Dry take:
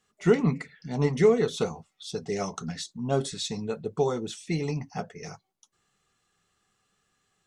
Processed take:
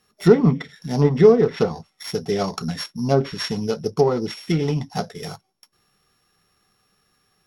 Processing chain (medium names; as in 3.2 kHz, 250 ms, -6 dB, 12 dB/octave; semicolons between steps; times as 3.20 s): sorted samples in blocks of 8 samples; low-pass that closes with the level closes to 1.6 kHz, closed at -20.5 dBFS; trim +8 dB